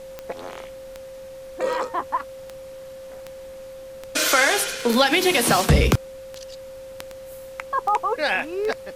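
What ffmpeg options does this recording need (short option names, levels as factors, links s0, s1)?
-af "adeclick=t=4,bandreject=f=530:w=30,afftdn=nr=28:nf=-39"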